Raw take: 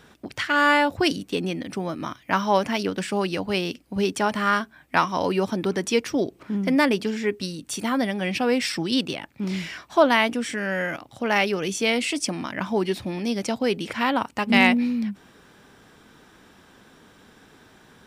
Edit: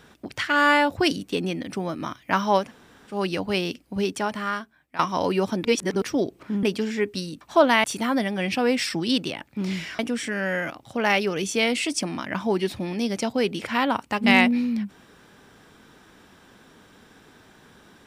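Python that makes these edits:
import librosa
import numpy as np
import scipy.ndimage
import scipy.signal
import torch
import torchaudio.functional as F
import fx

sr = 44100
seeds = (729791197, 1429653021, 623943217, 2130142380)

y = fx.edit(x, sr, fx.room_tone_fill(start_s=2.64, length_s=0.51, crossfade_s=0.16),
    fx.fade_out_to(start_s=3.78, length_s=1.21, floor_db=-17.5),
    fx.reverse_span(start_s=5.65, length_s=0.37),
    fx.cut(start_s=6.63, length_s=0.26),
    fx.move(start_s=9.82, length_s=0.43, to_s=7.67), tone=tone)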